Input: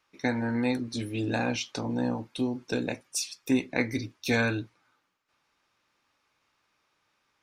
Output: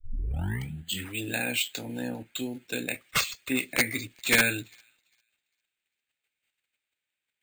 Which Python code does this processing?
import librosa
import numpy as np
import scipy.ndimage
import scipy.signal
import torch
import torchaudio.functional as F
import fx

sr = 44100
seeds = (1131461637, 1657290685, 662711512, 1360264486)

p1 = fx.tape_start_head(x, sr, length_s=1.18)
p2 = fx.tilt_shelf(p1, sr, db=-8.0, hz=860.0)
p3 = fx.level_steps(p2, sr, step_db=23)
p4 = p2 + F.gain(torch.from_numpy(p3), 2.0).numpy()
p5 = fx.fixed_phaser(p4, sr, hz=2600.0, stages=4)
p6 = 10.0 ** (-15.5 / 20.0) * (np.abs((p5 / 10.0 ** (-15.5 / 20.0) + 3.0) % 4.0 - 2.0) - 1.0)
p7 = p6 + fx.echo_wet_highpass(p6, sr, ms=399, feedback_pct=39, hz=3000.0, wet_db=-23.5, dry=0)
p8 = np.repeat(p7[::4], 4)[:len(p7)]
y = fx.band_widen(p8, sr, depth_pct=40)